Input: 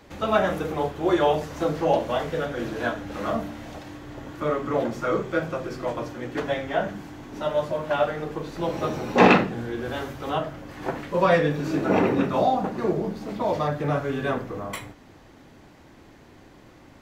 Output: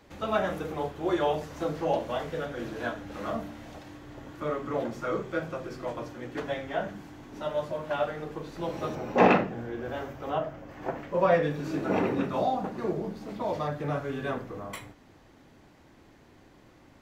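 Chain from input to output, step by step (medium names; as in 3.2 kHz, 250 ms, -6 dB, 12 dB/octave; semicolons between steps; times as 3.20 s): 8.95–11.43 s: fifteen-band graphic EQ 630 Hz +5 dB, 4 kHz -6 dB, 10 kHz -12 dB; trim -6 dB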